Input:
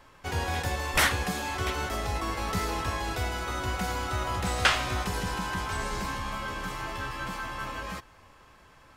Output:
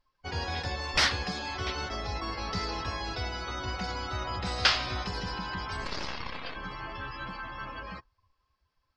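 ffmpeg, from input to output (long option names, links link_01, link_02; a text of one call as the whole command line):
ffmpeg -i in.wav -filter_complex "[0:a]asettb=1/sr,asplit=3[link_01][link_02][link_03];[link_01]atrim=end=5.854[link_04];[link_02]atrim=start=5.85:end=6.56,asetpts=PTS-STARTPTS,afade=type=in:duration=0.004:curve=qsin,afade=type=out:start_time=0.706:duration=0.004:curve=qsin,aeval=exprs='0.0794*(cos(1*acos(clip(val(0)/0.0794,-1,1)))-cos(1*PI/2))+0.0251*(cos(3*acos(clip(val(0)/0.0794,-1,1)))-cos(3*PI/2))+0.0316*(cos(4*acos(clip(val(0)/0.0794,-1,1)))-cos(4*PI/2))':channel_layout=same[link_05];[link_03]atrim=start=6.556[link_06];[link_04][link_05]acrossfade=duration=0.004:curve1=hsin:curve2=qsin[link_07];[link_07][link_06]acrossfade=duration=0.004:curve1=qsin:curve2=hsin,afftdn=noise_reduction=24:noise_floor=-41,lowpass=frequency=4900:width_type=q:width=4.4,volume=-4dB" out.wav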